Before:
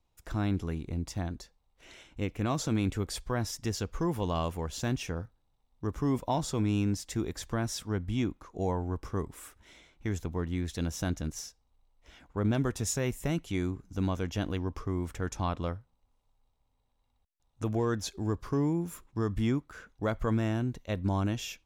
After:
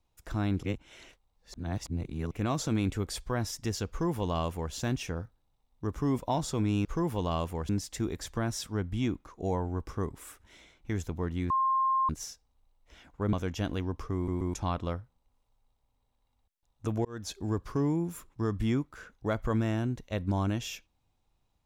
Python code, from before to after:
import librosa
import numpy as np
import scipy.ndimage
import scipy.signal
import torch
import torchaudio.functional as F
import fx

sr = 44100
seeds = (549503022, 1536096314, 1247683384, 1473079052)

y = fx.edit(x, sr, fx.reverse_span(start_s=0.63, length_s=1.68),
    fx.duplicate(start_s=3.89, length_s=0.84, to_s=6.85),
    fx.bleep(start_s=10.66, length_s=0.59, hz=1060.0, db=-23.5),
    fx.cut(start_s=12.49, length_s=1.61),
    fx.stutter_over(start_s=14.92, slice_s=0.13, count=3),
    fx.fade_in_span(start_s=17.82, length_s=0.31), tone=tone)